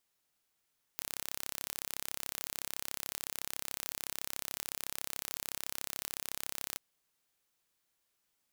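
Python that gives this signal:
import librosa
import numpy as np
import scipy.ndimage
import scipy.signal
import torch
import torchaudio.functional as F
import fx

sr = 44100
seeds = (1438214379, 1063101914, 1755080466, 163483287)

y = 10.0 ** (-10.5 / 20.0) * (np.mod(np.arange(round(5.78 * sr)), round(sr / 33.8)) == 0)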